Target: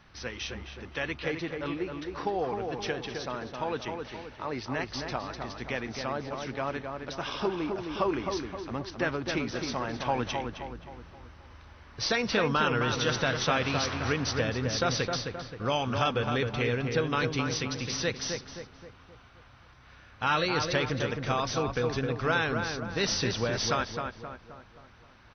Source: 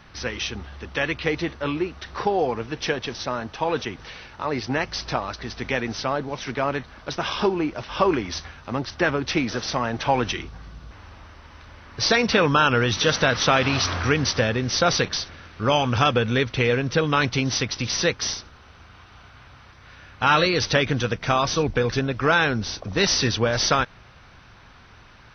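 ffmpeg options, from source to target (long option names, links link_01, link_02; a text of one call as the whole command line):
ffmpeg -i in.wav -filter_complex "[0:a]asplit=2[link_01][link_02];[link_02]adelay=263,lowpass=frequency=1900:poles=1,volume=-4.5dB,asplit=2[link_03][link_04];[link_04]adelay=263,lowpass=frequency=1900:poles=1,volume=0.49,asplit=2[link_05][link_06];[link_06]adelay=263,lowpass=frequency=1900:poles=1,volume=0.49,asplit=2[link_07][link_08];[link_08]adelay=263,lowpass=frequency=1900:poles=1,volume=0.49,asplit=2[link_09][link_10];[link_10]adelay=263,lowpass=frequency=1900:poles=1,volume=0.49,asplit=2[link_11][link_12];[link_12]adelay=263,lowpass=frequency=1900:poles=1,volume=0.49[link_13];[link_01][link_03][link_05][link_07][link_09][link_11][link_13]amix=inputs=7:normalize=0,volume=-8.5dB" out.wav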